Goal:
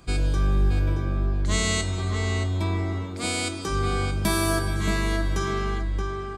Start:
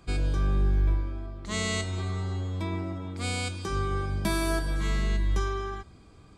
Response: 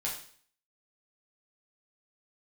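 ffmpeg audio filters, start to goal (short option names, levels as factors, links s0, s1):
-filter_complex "[0:a]highshelf=f=5900:g=6,asplit=2[s0][s1];[s1]adelay=625,lowpass=f=2200:p=1,volume=0.708,asplit=2[s2][s3];[s3]adelay=625,lowpass=f=2200:p=1,volume=0.26,asplit=2[s4][s5];[s5]adelay=625,lowpass=f=2200:p=1,volume=0.26,asplit=2[s6][s7];[s7]adelay=625,lowpass=f=2200:p=1,volume=0.26[s8];[s2][s4][s6][s8]amix=inputs=4:normalize=0[s9];[s0][s9]amix=inputs=2:normalize=0,volume=1.5"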